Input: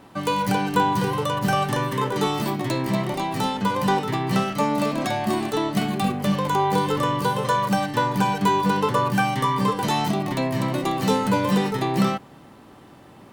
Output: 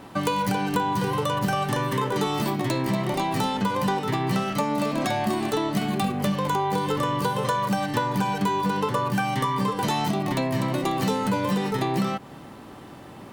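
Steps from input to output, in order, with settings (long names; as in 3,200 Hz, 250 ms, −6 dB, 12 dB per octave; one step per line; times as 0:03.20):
downward compressor, threshold −26 dBFS, peak gain reduction 11 dB
level +4.5 dB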